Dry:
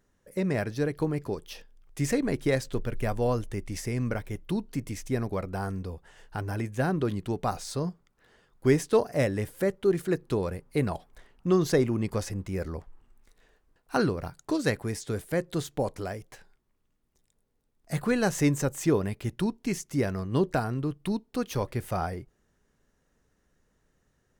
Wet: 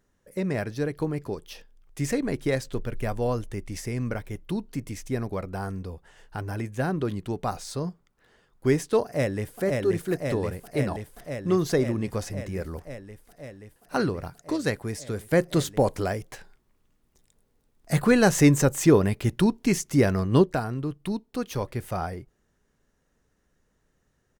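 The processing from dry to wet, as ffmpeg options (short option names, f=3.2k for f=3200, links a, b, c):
-filter_complex "[0:a]asplit=2[a][b];[b]afade=t=in:st=9.04:d=0.01,afade=t=out:st=9.61:d=0.01,aecho=0:1:530|1060|1590|2120|2650|3180|3710|4240|4770|5300|5830|6360:0.749894|0.599915|0.479932|0.383946|0.307157|0.245725|0.19658|0.157264|0.125811|0.100649|0.0805193|0.0644154[c];[a][c]amix=inputs=2:normalize=0,asplit=3[d][e][f];[d]afade=t=out:st=15.31:d=0.02[g];[e]acontrast=80,afade=t=in:st=15.31:d=0.02,afade=t=out:st=20.42:d=0.02[h];[f]afade=t=in:st=20.42:d=0.02[i];[g][h][i]amix=inputs=3:normalize=0"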